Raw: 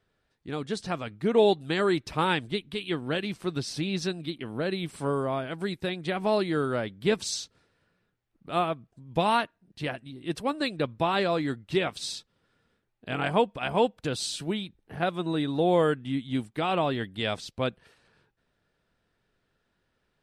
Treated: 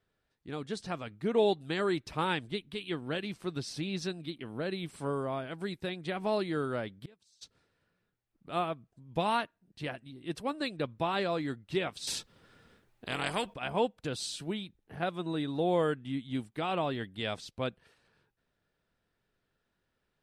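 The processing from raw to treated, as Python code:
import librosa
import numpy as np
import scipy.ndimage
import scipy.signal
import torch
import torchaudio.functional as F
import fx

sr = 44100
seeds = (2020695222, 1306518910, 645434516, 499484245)

y = fx.gate_flip(x, sr, shuts_db=-27.0, range_db=-30, at=(6.99, 7.41), fade=0.02)
y = fx.spectral_comp(y, sr, ratio=2.0, at=(12.07, 13.54))
y = y * 10.0 ** (-5.5 / 20.0)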